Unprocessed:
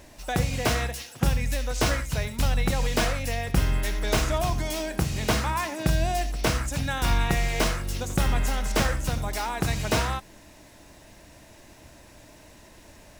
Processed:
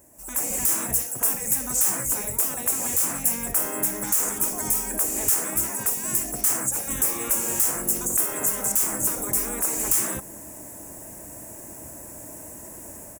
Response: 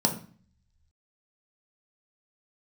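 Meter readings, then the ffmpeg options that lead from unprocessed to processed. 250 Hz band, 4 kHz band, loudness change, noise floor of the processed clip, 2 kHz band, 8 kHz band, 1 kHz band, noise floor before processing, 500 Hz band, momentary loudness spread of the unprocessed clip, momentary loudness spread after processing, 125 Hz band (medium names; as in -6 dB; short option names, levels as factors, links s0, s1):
-4.0 dB, -7.5 dB, +4.5 dB, -41 dBFS, -6.5 dB, +13.5 dB, -5.5 dB, -51 dBFS, -5.5 dB, 4 LU, 18 LU, -14.5 dB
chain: -af "highpass=f=150:p=1,afftfilt=real='re*lt(hypot(re,im),0.0794)':imag='im*lt(hypot(re,im),0.0794)':win_size=1024:overlap=0.75,firequalizer=gain_entry='entry(360,0);entry(3900,-28);entry(7400,-3)':delay=0.05:min_phase=1,alimiter=level_in=2.24:limit=0.0631:level=0:latency=1:release=242,volume=0.447,dynaudnorm=f=140:g=5:m=5.62,crystalizer=i=3:c=0,volume=0.531"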